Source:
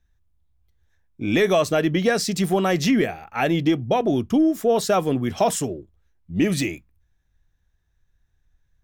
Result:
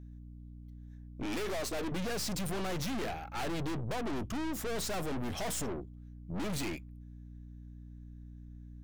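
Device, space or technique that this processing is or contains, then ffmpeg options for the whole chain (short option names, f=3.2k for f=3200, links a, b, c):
valve amplifier with mains hum: -filter_complex "[0:a]asettb=1/sr,asplit=3[a][b][c];[a]atrim=end=1.234[d];[b]atrim=start=1.23:end=1.92,asetpts=PTS-STARTPTS,afade=t=in:d=0.004:c=qsin,afade=t=out:st=0.686:d=0.004:c=qsin,highpass=f=240:w=0.5412,highpass=f=240:w=1.3066[e];[c]atrim=start=1.916[f];[d][e]acrossfade=d=0.004:c1=hsin:c2=qsin[g];[g][f]acrossfade=d=0.004:c1=qsin:c2=hsin,aeval=exprs='(tanh(63.1*val(0)+0.65)-tanh(0.65))/63.1':c=same,aeval=exprs='val(0)+0.00398*(sin(2*PI*60*n/s)+sin(2*PI*2*60*n/s)/2+sin(2*PI*3*60*n/s)/3+sin(2*PI*4*60*n/s)/4+sin(2*PI*5*60*n/s)/5)':c=same,volume=1dB"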